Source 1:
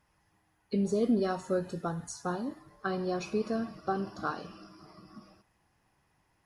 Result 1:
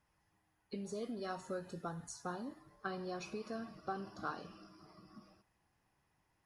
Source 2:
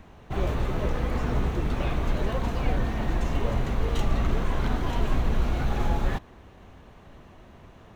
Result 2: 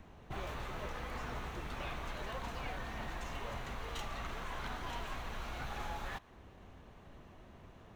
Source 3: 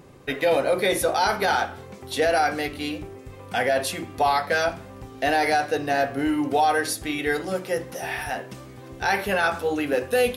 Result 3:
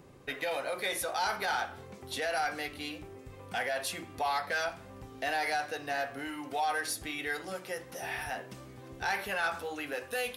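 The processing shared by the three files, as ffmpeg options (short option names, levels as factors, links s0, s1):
-filter_complex "[0:a]acrossover=split=710|7000[s0][s1][s2];[s0]acompressor=threshold=0.0178:ratio=6[s3];[s3][s1][s2]amix=inputs=3:normalize=0,asoftclip=type=tanh:threshold=0.168,volume=0.473"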